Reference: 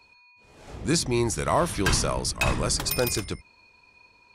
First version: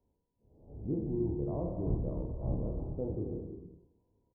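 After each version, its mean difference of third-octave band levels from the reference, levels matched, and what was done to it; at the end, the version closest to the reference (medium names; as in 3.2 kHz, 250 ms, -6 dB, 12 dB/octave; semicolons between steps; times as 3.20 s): 16.5 dB: spectral sustain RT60 0.69 s; Gaussian low-pass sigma 16 samples; doubling 28 ms -6 dB; gated-style reverb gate 370 ms flat, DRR 6 dB; trim -9 dB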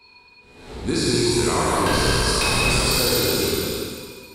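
10.5 dB: spectral sustain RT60 1.81 s; graphic EQ with 31 bands 250 Hz +5 dB, 400 Hz +8 dB, 630 Hz -6 dB, 4 kHz +8 dB, 6.3 kHz -7 dB; compression, threshold -21 dBFS, peak gain reduction 8 dB; gated-style reverb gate 340 ms flat, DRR -4 dB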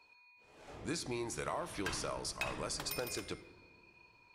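5.0 dB: tone controls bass -9 dB, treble -4 dB; compression, threshold -29 dBFS, peak gain reduction 11 dB; flange 1.2 Hz, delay 8.7 ms, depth 6 ms, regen +88%; simulated room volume 2900 m³, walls mixed, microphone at 0.45 m; trim -2 dB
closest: third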